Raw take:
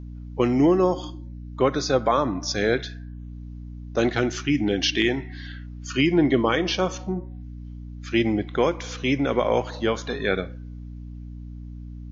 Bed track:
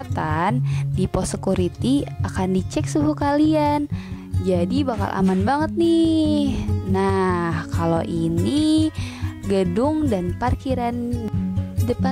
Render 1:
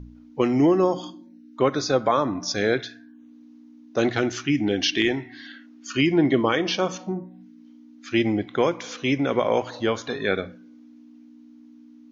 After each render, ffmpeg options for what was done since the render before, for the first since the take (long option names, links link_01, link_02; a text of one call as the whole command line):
ffmpeg -i in.wav -af "bandreject=frequency=60:width_type=h:width=4,bandreject=frequency=120:width_type=h:width=4,bandreject=frequency=180:width_type=h:width=4" out.wav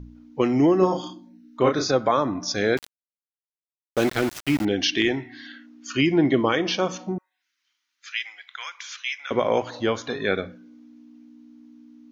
ffmpeg -i in.wav -filter_complex "[0:a]asettb=1/sr,asplit=3[link_01][link_02][link_03];[link_01]atrim=end=0.784[link_04];[link_02]atrim=start=0.78:end=1.91,asetpts=PTS-STARTPTS,afade=type=in:duration=0.004:curve=qsin,afade=type=out:start_time=1.126:duration=0.004:curve=qsin,asplit=2[link_05][link_06];[link_06]adelay=32,volume=-4dB[link_07];[link_05][link_07]amix=inputs=2:normalize=0,atrim=end_sample=49833[link_08];[link_03]atrim=start=1.906[link_09];[link_04][link_08]acrossfade=duration=0.004:curve1=hsin:curve2=qsin[link_10];[link_10][link_09]acrossfade=duration=0.004:curve1=qsin:curve2=hsin,asettb=1/sr,asplit=3[link_11][link_12][link_13];[link_11]atrim=end=2.774[link_14];[link_12]atrim=start=2.77:end=4.65,asetpts=PTS-STARTPTS,afade=type=in:duration=0.004:curve=qsin,afade=type=out:start_time=1.876:duration=0.004:curve=qsin,aeval=exprs='val(0)*gte(abs(val(0)),0.0447)':channel_layout=same[link_15];[link_13]atrim=start=4.646[link_16];[link_14][link_15]acrossfade=duration=0.004:curve1=hsin:curve2=qsin[link_17];[link_17][link_16]acrossfade=duration=0.004:curve1=qsin:curve2=hsin,asettb=1/sr,asplit=3[link_18][link_19][link_20];[link_18]atrim=end=7.184[link_21];[link_19]atrim=start=7.18:end=9.31,asetpts=PTS-STARTPTS,afade=type=in:duration=0.004:curve=qsin,afade=type=out:start_time=2.126:duration=0.004:curve=qsin,highpass=frequency=1400:width=0.5412,highpass=frequency=1400:width=1.3066[link_22];[link_20]atrim=start=9.306[link_23];[link_21][link_22]acrossfade=duration=0.004:curve1=hsin:curve2=qsin[link_24];[link_24][link_23]acrossfade=duration=0.004:curve1=qsin:curve2=hsin" out.wav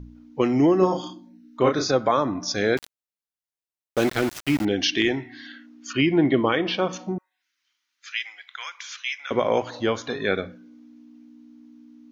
ffmpeg -i in.wav -filter_complex "[0:a]asettb=1/sr,asplit=3[link_01][link_02][link_03];[link_01]atrim=end=5.934[link_04];[link_02]atrim=start=5.93:end=6.93,asetpts=PTS-STARTPTS,afade=type=in:duration=0.004:curve=qsin,afade=type=out:start_time=0.996:duration=0.004:curve=qsin,lowpass=frequency=4100:width=0.5412,lowpass=frequency=4100:width=1.3066[link_05];[link_03]atrim=start=6.926[link_06];[link_04][link_05]acrossfade=duration=0.004:curve1=hsin:curve2=qsin[link_07];[link_07][link_06]acrossfade=duration=0.004:curve1=qsin:curve2=hsin" out.wav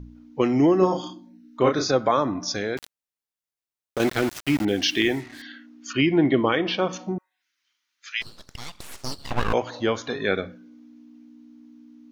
ffmpeg -i in.wav -filter_complex "[0:a]asettb=1/sr,asplit=3[link_01][link_02][link_03];[link_01]atrim=end=2.384[link_04];[link_02]atrim=start=2.38:end=4,asetpts=PTS-STARTPTS,afade=type=in:duration=0.004:curve=qsin,afade=type=out:start_time=1.616:duration=0.004:curve=qsin,acompressor=threshold=-22dB:ratio=6:attack=3.2:release=140:knee=1:detection=peak[link_05];[link_03]atrim=start=3.996[link_06];[link_04][link_05]acrossfade=duration=0.004:curve1=hsin:curve2=qsin[link_07];[link_07][link_06]acrossfade=duration=0.004:curve1=qsin:curve2=hsin,asettb=1/sr,asplit=3[link_08][link_09][link_10];[link_08]atrim=end=4.684[link_11];[link_09]atrim=start=4.68:end=5.42,asetpts=PTS-STARTPTS,afade=type=in:duration=0.004:curve=qsin,afade=type=out:start_time=0.736:duration=0.004:curve=qsin,acrusher=bits=6:mix=0:aa=0.5[link_12];[link_10]atrim=start=5.416[link_13];[link_11][link_12]acrossfade=duration=0.004:curve1=hsin:curve2=qsin[link_14];[link_14][link_13]acrossfade=duration=0.004:curve1=qsin:curve2=hsin,asplit=3[link_15][link_16][link_17];[link_15]afade=type=out:start_time=8.21:duration=0.02[link_18];[link_16]aeval=exprs='abs(val(0))':channel_layout=same,afade=type=in:start_time=8.21:duration=0.02,afade=type=out:start_time=9.52:duration=0.02[link_19];[link_17]afade=type=in:start_time=9.52:duration=0.02[link_20];[link_18][link_19][link_20]amix=inputs=3:normalize=0" out.wav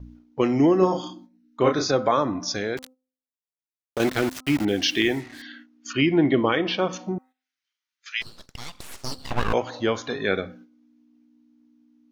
ffmpeg -i in.wav -af "bandreject=frequency=257.5:width_type=h:width=4,bandreject=frequency=515:width_type=h:width=4,bandreject=frequency=772.5:width_type=h:width=4,bandreject=frequency=1030:width_type=h:width=4,bandreject=frequency=1287.5:width_type=h:width=4,agate=range=-11dB:threshold=-46dB:ratio=16:detection=peak" out.wav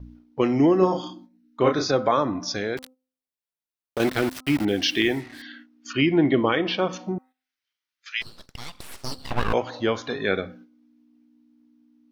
ffmpeg -i in.wav -af "equalizer=frequency=6700:width_type=o:width=0.33:gain=-5" out.wav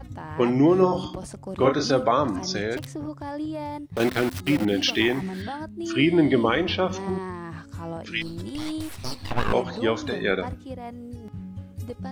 ffmpeg -i in.wav -i bed.wav -filter_complex "[1:a]volume=-14dB[link_01];[0:a][link_01]amix=inputs=2:normalize=0" out.wav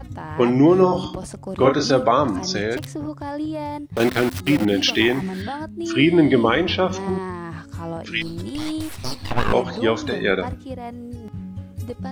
ffmpeg -i in.wav -af "volume=4dB,alimiter=limit=-3dB:level=0:latency=1" out.wav